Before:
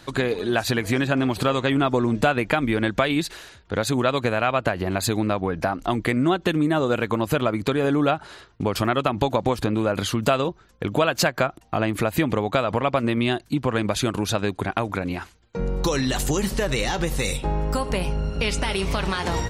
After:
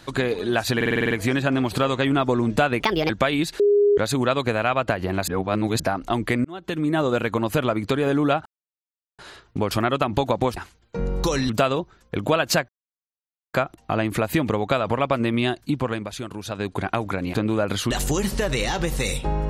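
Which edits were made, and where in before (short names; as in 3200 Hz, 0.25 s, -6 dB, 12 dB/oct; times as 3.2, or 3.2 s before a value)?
0.76 stutter 0.05 s, 8 plays
2.45–2.87 speed 142%
3.37–3.75 bleep 409 Hz -13.5 dBFS
5.05–5.57 reverse
6.22–6.74 fade in
8.23 insert silence 0.73 s
9.61–10.18 swap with 15.17–16.1
11.37 insert silence 0.85 s
13.61–14.59 dip -9 dB, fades 0.29 s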